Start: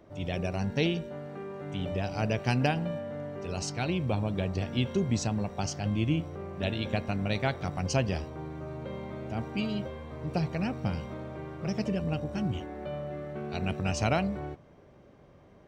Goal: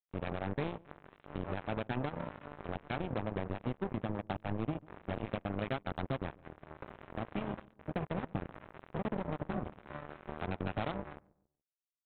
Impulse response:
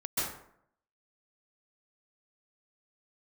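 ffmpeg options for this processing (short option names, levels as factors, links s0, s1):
-filter_complex "[0:a]lowpass=f=1900:w=0.5412,lowpass=f=1900:w=1.3066,bandreject=f=118.7:t=h:w=4,bandreject=f=237.4:t=h:w=4,bandreject=f=356.1:t=h:w=4,bandreject=f=474.8:t=h:w=4,bandreject=f=593.5:t=h:w=4,bandreject=f=712.2:t=h:w=4,bandreject=f=830.9:t=h:w=4,bandreject=f=949.6:t=h:w=4,bandreject=f=1068.3:t=h:w=4,bandreject=f=1187:t=h:w=4,bandreject=f=1305.7:t=h:w=4,bandreject=f=1424.4:t=h:w=4,acompressor=threshold=0.0282:ratio=5,aresample=8000,acrusher=bits=4:mix=0:aa=0.5,aresample=44100,atempo=1.3,asplit=2[s0][s1];[s1]adelay=142,lowpass=f=860:p=1,volume=0.0794,asplit=2[s2][s3];[s3]adelay=142,lowpass=f=860:p=1,volume=0.42,asplit=2[s4][s5];[s5]adelay=142,lowpass=f=860:p=1,volume=0.42[s6];[s2][s4][s6]amix=inputs=3:normalize=0[s7];[s0][s7]amix=inputs=2:normalize=0,volume=0.841"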